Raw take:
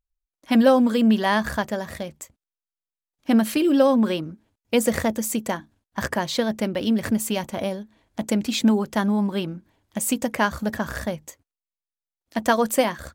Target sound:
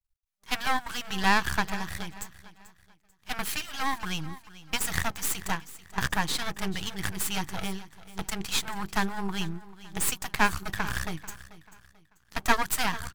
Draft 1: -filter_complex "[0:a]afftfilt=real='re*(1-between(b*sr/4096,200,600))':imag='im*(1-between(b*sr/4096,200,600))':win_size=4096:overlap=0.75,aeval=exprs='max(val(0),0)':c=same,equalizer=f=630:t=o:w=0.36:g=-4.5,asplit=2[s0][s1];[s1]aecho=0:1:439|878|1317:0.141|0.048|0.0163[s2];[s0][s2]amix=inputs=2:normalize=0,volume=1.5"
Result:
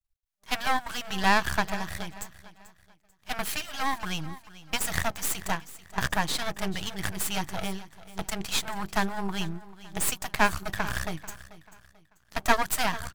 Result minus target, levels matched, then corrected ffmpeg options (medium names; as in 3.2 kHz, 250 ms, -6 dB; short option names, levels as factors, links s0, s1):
500 Hz band +3.5 dB
-filter_complex "[0:a]afftfilt=real='re*(1-between(b*sr/4096,200,600))':imag='im*(1-between(b*sr/4096,200,600))':win_size=4096:overlap=0.75,aeval=exprs='max(val(0),0)':c=same,equalizer=f=630:t=o:w=0.36:g=-12,asplit=2[s0][s1];[s1]aecho=0:1:439|878|1317:0.141|0.048|0.0163[s2];[s0][s2]amix=inputs=2:normalize=0,volume=1.5"